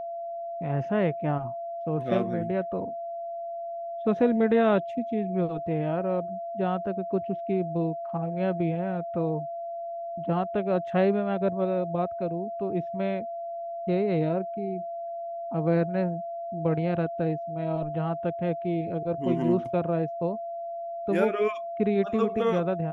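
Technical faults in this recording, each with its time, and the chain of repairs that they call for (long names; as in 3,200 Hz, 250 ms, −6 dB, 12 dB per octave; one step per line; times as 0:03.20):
whistle 680 Hz −32 dBFS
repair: notch filter 680 Hz, Q 30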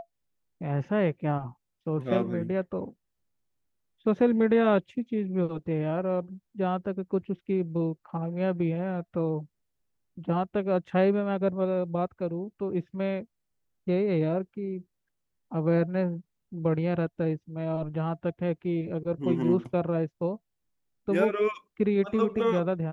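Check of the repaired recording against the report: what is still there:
none of them is left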